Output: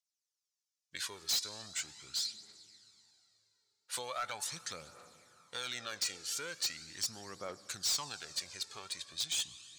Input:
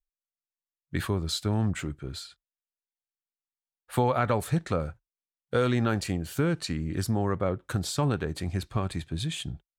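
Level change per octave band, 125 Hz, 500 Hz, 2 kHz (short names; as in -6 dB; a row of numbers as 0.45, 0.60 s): -31.0, -19.0, -7.0 dB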